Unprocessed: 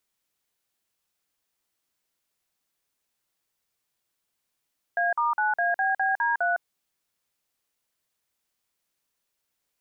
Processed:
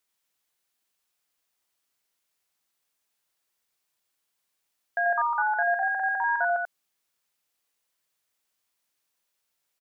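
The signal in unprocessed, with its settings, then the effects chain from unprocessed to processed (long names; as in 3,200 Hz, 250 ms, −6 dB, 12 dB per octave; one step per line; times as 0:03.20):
touch tones "A*9ABBD3", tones 158 ms, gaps 47 ms, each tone −24 dBFS
low-shelf EQ 370 Hz −6.5 dB
on a send: single-tap delay 89 ms −4.5 dB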